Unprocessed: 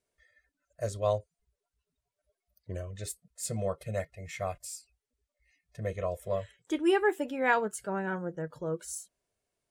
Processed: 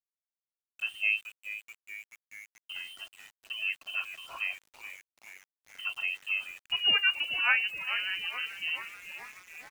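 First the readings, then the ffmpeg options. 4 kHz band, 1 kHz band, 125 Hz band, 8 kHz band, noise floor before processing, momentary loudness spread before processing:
+17.5 dB, -8.0 dB, under -25 dB, -14.0 dB, under -85 dBFS, 14 LU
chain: -filter_complex "[0:a]acrossover=split=210[s0][s1];[s0]acompressor=threshold=0.00398:ratio=5[s2];[s2][s1]amix=inputs=2:normalize=0,lowpass=f=2700:t=q:w=0.5098,lowpass=f=2700:t=q:w=0.6013,lowpass=f=2700:t=q:w=0.9,lowpass=f=2700:t=q:w=2.563,afreqshift=-3200,asplit=8[s3][s4][s5][s6][s7][s8][s9][s10];[s4]adelay=430,afreqshift=-140,volume=0.251[s11];[s5]adelay=860,afreqshift=-280,volume=0.158[s12];[s6]adelay=1290,afreqshift=-420,volume=0.1[s13];[s7]adelay=1720,afreqshift=-560,volume=0.0631[s14];[s8]adelay=2150,afreqshift=-700,volume=0.0394[s15];[s9]adelay=2580,afreqshift=-840,volume=0.0248[s16];[s10]adelay=3010,afreqshift=-980,volume=0.0157[s17];[s3][s11][s12][s13][s14][s15][s16][s17]amix=inputs=8:normalize=0,aeval=exprs='val(0)*gte(abs(val(0)),0.00376)':c=same"

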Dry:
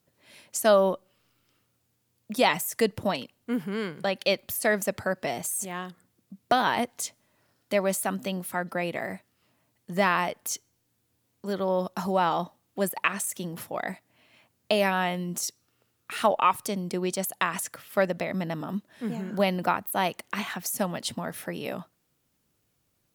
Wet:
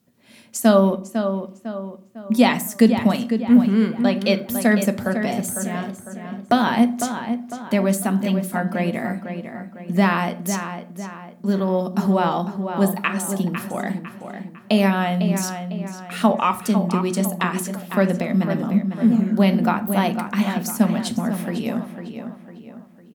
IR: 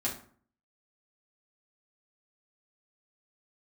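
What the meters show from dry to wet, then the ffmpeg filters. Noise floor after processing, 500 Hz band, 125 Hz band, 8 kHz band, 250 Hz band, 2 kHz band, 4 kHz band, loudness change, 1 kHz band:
-47 dBFS, +4.5 dB, +12.5 dB, +2.5 dB, +14.5 dB, +3.0 dB, +2.5 dB, +7.5 dB, +4.0 dB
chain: -filter_complex "[0:a]equalizer=f=210:w=1.7:g=12.5,asplit=2[s0][s1];[s1]adelay=502,lowpass=f=3300:p=1,volume=0.398,asplit=2[s2][s3];[s3]adelay=502,lowpass=f=3300:p=1,volume=0.44,asplit=2[s4][s5];[s5]adelay=502,lowpass=f=3300:p=1,volume=0.44,asplit=2[s6][s7];[s7]adelay=502,lowpass=f=3300:p=1,volume=0.44,asplit=2[s8][s9];[s9]adelay=502,lowpass=f=3300:p=1,volume=0.44[s10];[s0][s2][s4][s6][s8][s10]amix=inputs=6:normalize=0,asplit=2[s11][s12];[1:a]atrim=start_sample=2205[s13];[s12][s13]afir=irnorm=-1:irlink=0,volume=0.316[s14];[s11][s14]amix=inputs=2:normalize=0"

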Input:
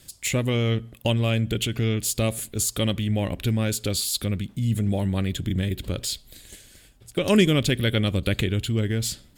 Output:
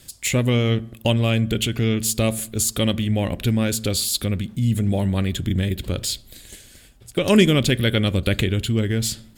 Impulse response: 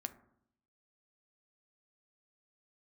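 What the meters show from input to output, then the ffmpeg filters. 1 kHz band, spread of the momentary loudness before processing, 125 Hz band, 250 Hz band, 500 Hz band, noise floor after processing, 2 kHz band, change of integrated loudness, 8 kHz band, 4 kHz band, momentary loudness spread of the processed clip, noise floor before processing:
+3.5 dB, 7 LU, +3.0 dB, +4.0 dB, +3.5 dB, -49 dBFS, +3.5 dB, +3.5 dB, +3.5 dB, +3.5 dB, 7 LU, -53 dBFS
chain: -filter_complex "[0:a]asplit=2[s0][s1];[1:a]atrim=start_sample=2205[s2];[s1][s2]afir=irnorm=-1:irlink=0,volume=0.668[s3];[s0][s3]amix=inputs=2:normalize=0"

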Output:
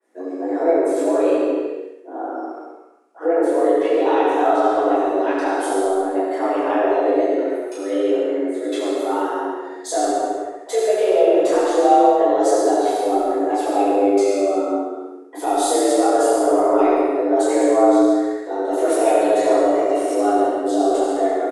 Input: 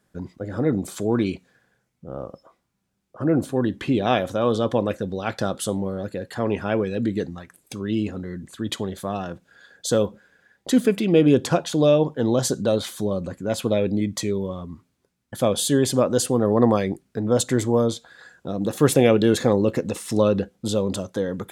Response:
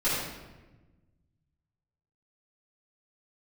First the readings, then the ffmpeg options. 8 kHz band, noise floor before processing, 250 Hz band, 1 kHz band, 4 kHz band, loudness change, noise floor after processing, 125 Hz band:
0.0 dB, -73 dBFS, +2.0 dB, +12.5 dB, -3.0 dB, +4.5 dB, -37 dBFS, under -25 dB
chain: -filter_complex "[0:a]afreqshift=190,equalizer=f=3500:w=1.2:g=-5,alimiter=limit=0.211:level=0:latency=1:release=108,acontrast=48,aecho=1:1:68|136|204|272|340|408|476:0.531|0.287|0.155|0.0836|0.0451|0.0244|0.0132[s0];[1:a]atrim=start_sample=2205,afade=t=out:st=0.33:d=0.01,atrim=end_sample=14994,asetrate=23373,aresample=44100[s1];[s0][s1]afir=irnorm=-1:irlink=0,adynamicequalizer=threshold=0.0794:dfrequency=2700:dqfactor=0.7:tfrequency=2700:tqfactor=0.7:attack=5:release=100:ratio=0.375:range=2:mode=cutabove:tftype=highshelf,volume=0.158"

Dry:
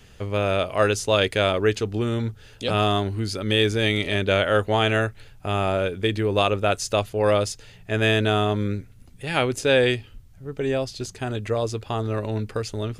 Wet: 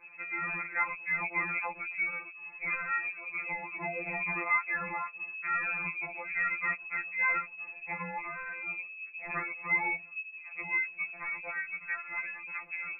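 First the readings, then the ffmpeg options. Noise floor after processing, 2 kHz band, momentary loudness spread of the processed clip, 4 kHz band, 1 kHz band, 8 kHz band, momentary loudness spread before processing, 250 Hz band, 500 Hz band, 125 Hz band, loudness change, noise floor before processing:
-49 dBFS, -2.0 dB, 9 LU, under -40 dB, -9.0 dB, under -40 dB, 10 LU, -23.0 dB, -26.0 dB, -27.5 dB, -9.5 dB, -49 dBFS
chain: -filter_complex "[0:a]acrossover=split=140|1300[s0][s1][s2];[s0]acompressor=threshold=0.0282:ratio=4[s3];[s1]acompressor=threshold=0.0251:ratio=4[s4];[s2]acompressor=threshold=0.0447:ratio=4[s5];[s3][s4][s5]amix=inputs=3:normalize=0,lowpass=f=2200:t=q:w=0.5098,lowpass=f=2200:t=q:w=0.6013,lowpass=f=2200:t=q:w=0.9,lowpass=f=2200:t=q:w=2.563,afreqshift=-2600,acrossover=split=120|880[s6][s7][s8];[s6]alimiter=level_in=23.7:limit=0.0631:level=0:latency=1:release=260,volume=0.0422[s9];[s9][s7][s8]amix=inputs=3:normalize=0,afftfilt=real='re*2.83*eq(mod(b,8),0)':imag='im*2.83*eq(mod(b,8),0)':win_size=2048:overlap=0.75"

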